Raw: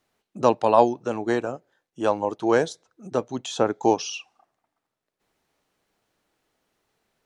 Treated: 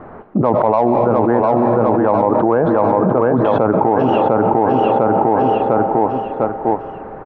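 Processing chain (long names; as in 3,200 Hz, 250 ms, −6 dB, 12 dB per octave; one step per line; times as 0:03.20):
low-pass filter 1,300 Hz 24 dB per octave
dynamic equaliser 370 Hz, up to −5 dB, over −31 dBFS, Q 2
in parallel at −6.5 dB: soft clipping −14.5 dBFS, distortion −11 dB
on the sum: repeating echo 701 ms, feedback 35%, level −7.5 dB
on a send at −16.5 dB: convolution reverb RT60 3.9 s, pre-delay 60 ms
on the sum: envelope flattener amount 100%
level −2.5 dB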